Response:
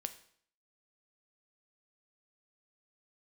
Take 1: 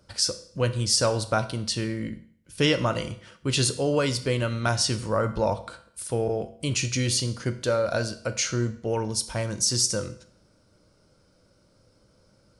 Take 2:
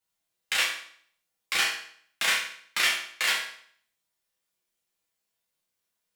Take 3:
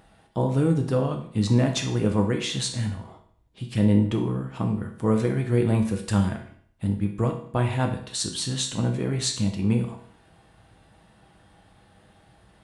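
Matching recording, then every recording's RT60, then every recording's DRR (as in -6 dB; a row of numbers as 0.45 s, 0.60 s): 1; 0.60 s, 0.60 s, 0.60 s; 8.5 dB, -5.5 dB, 2.5 dB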